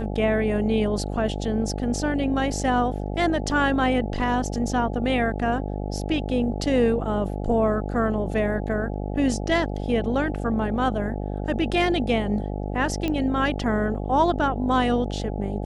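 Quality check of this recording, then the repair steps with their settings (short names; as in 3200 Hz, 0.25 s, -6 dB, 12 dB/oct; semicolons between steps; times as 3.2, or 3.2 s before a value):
buzz 50 Hz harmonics 17 -29 dBFS
13.08 pop -14 dBFS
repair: de-click; de-hum 50 Hz, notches 17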